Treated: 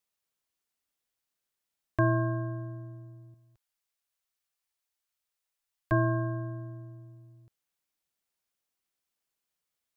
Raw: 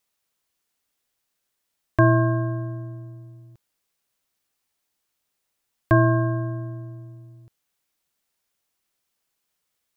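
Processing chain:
0:03.34–0:05.92: parametric band 220 Hz −13 dB 2 octaves
level −8.5 dB

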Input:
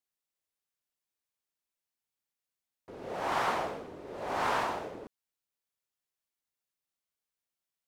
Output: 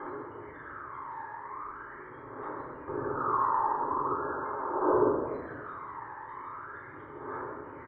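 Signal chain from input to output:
compressor on every frequency bin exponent 0.4
notch filter 470 Hz, Q 12
hum removal 212.8 Hz, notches 9
gate on every frequency bin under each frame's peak −10 dB strong
parametric band 1,300 Hz −3.5 dB 0.83 octaves
downward compressor 8 to 1, threshold −42 dBFS, peak gain reduction 15.5 dB
phase shifter 0.41 Hz, delay 1.2 ms, feedback 74%
high-frequency loss of the air 130 metres
phaser with its sweep stopped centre 710 Hz, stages 6
echo with shifted repeats 184 ms, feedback 37%, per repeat +59 Hz, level −12.5 dB
rectangular room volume 670 cubic metres, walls mixed, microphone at 3.8 metres
level +7 dB

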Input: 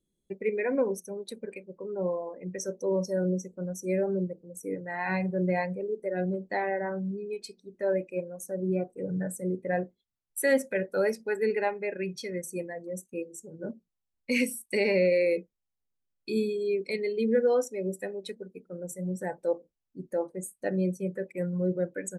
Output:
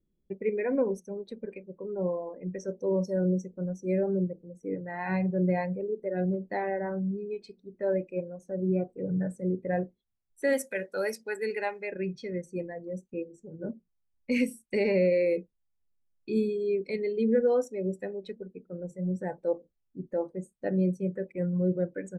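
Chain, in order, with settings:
low-pass that shuts in the quiet parts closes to 2,700 Hz, open at −23 dBFS
spectral tilt −2 dB per octave, from 0:10.52 +2 dB per octave, from 0:11.90 −2 dB per octave
level −2.5 dB

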